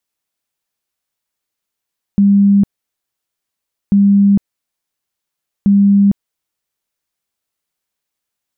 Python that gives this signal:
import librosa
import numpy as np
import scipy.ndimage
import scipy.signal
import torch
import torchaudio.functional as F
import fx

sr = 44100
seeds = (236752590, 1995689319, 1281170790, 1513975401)

y = fx.tone_burst(sr, hz=200.0, cycles=91, every_s=1.74, bursts=3, level_db=-6.0)